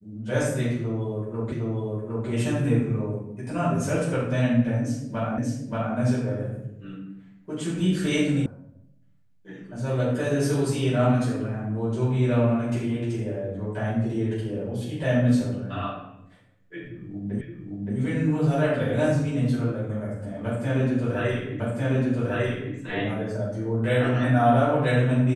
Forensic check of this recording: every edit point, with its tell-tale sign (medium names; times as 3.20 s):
1.52 s: repeat of the last 0.76 s
5.38 s: repeat of the last 0.58 s
8.46 s: sound stops dead
17.41 s: repeat of the last 0.57 s
21.60 s: repeat of the last 1.15 s